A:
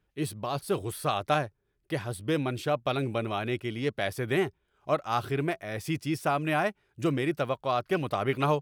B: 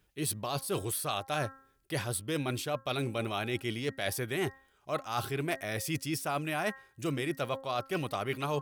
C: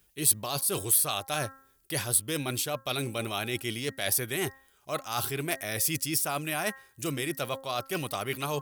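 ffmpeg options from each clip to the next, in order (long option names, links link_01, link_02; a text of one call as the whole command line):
ffmpeg -i in.wav -af "highshelf=frequency=3600:gain=11.5,bandreject=frequency=268.1:width_type=h:width=4,bandreject=frequency=536.2:width_type=h:width=4,bandreject=frequency=804.3:width_type=h:width=4,bandreject=frequency=1072.4:width_type=h:width=4,bandreject=frequency=1340.5:width_type=h:width=4,bandreject=frequency=1608.6:width_type=h:width=4,bandreject=frequency=1876.7:width_type=h:width=4,areverse,acompressor=threshold=-33dB:ratio=6,areverse,volume=3dB" out.wav
ffmpeg -i in.wav -af "crystalizer=i=2.5:c=0" out.wav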